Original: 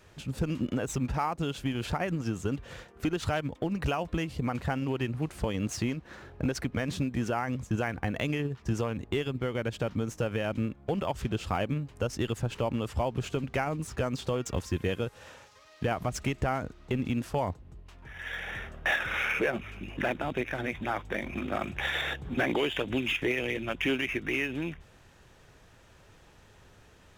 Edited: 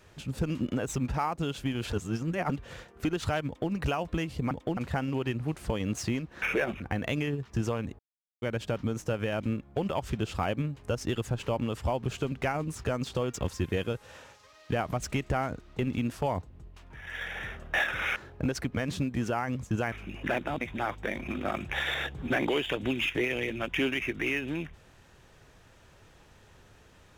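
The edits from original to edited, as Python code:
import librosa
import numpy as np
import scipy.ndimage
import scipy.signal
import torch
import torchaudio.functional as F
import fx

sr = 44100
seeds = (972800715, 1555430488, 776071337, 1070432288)

y = fx.edit(x, sr, fx.reverse_span(start_s=1.93, length_s=0.57),
    fx.duplicate(start_s=3.46, length_s=0.26, to_s=4.51),
    fx.swap(start_s=6.16, length_s=1.76, other_s=19.28, other_length_s=0.38),
    fx.silence(start_s=9.11, length_s=0.43),
    fx.cut(start_s=20.35, length_s=0.33), tone=tone)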